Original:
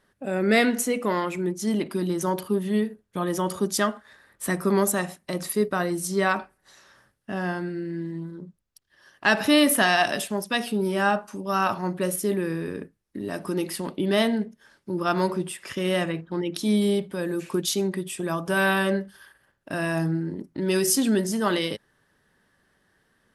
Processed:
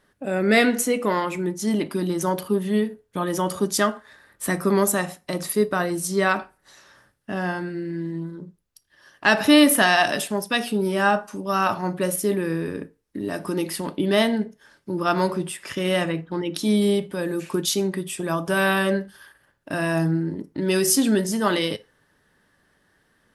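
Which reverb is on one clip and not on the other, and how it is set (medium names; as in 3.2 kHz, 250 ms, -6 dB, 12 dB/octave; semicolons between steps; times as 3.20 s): FDN reverb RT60 0.32 s, low-frequency decay 0.75×, high-frequency decay 0.8×, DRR 13 dB; trim +2.5 dB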